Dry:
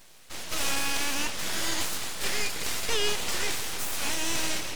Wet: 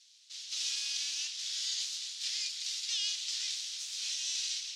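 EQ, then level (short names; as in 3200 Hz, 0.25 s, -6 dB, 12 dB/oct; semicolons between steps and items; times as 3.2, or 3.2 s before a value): Butterworth band-pass 4700 Hz, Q 1.5; 0.0 dB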